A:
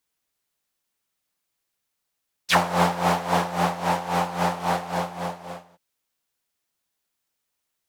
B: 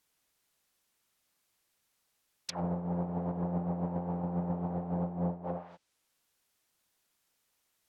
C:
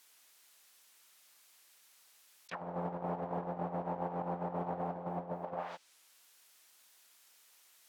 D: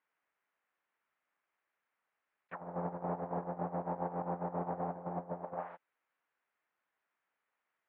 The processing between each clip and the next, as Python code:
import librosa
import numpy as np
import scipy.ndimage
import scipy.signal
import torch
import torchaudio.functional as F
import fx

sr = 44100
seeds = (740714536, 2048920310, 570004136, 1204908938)

y1 = fx.over_compress(x, sr, threshold_db=-27.0, ratio=-1.0)
y1 = fx.env_lowpass_down(y1, sr, base_hz=350.0, full_db=-27.0)
y2 = fx.highpass(y1, sr, hz=1100.0, slope=6)
y2 = fx.over_compress(y2, sr, threshold_db=-48.0, ratio=-0.5)
y2 = y2 * librosa.db_to_amplitude(10.0)
y3 = scipy.signal.sosfilt(scipy.signal.butter(4, 2000.0, 'lowpass', fs=sr, output='sos'), y2)
y3 = fx.upward_expand(y3, sr, threshold_db=-58.0, expansion=1.5)
y3 = y3 * librosa.db_to_amplitude(1.0)